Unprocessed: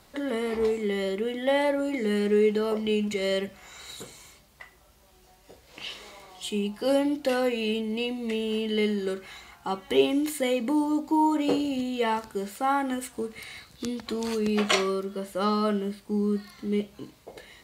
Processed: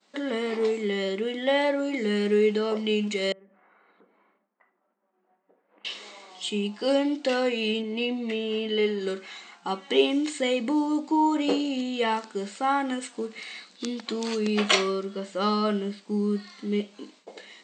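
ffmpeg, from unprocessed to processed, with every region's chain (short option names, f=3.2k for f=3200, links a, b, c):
-filter_complex "[0:a]asettb=1/sr,asplit=3[a][b][c];[a]atrim=end=3.324[d];[b]atrim=start=3.32:end=5.85,asetpts=PTS-STARTPTS,afade=t=in:d=0.004:c=qsin,afade=t=out:st=2.526:d=0.004:c=qsin,lowpass=f=1.6k:w=0.5412,lowpass=f=1.6k:w=1.3066,acompressor=threshold=-51dB:ratio=10:attack=3.2:release=140:knee=1:detection=peak[e];[c]atrim=start=5.846[f];[d][e]acrossfade=d=0.004:c1=hsin:c2=qsin[g];[g][f]acrossfade=d=0.004:c1=qsin:c2=hsin,asettb=1/sr,asplit=3[h][i][j];[h]atrim=end=7.824[k];[i]atrim=start=7.82:end=9.01,asetpts=PTS-STARTPTS,afade=t=in:d=0.004:c=qsin,afade=t=out:st=1.186:d=0.004:c=qsin,highshelf=f=5.4k:g=-11.5,asplit=2[l][m];[m]adelay=12,volume=-7dB[n];[l][n]amix=inputs=2:normalize=0,atrim=end_sample=52479[o];[j]atrim=start=9.006[p];[k][o]acrossfade=d=0.004:c1=hsin:c2=qsin[q];[q][p]acrossfade=d=0.004:c1=qsin:c2=hsin,agate=range=-33dB:threshold=-50dB:ratio=3:detection=peak,afftfilt=real='re*between(b*sr/4096,180,8600)':imag='im*between(b*sr/4096,180,8600)':win_size=4096:overlap=0.75,equalizer=f=3.5k:t=o:w=1.7:g=4"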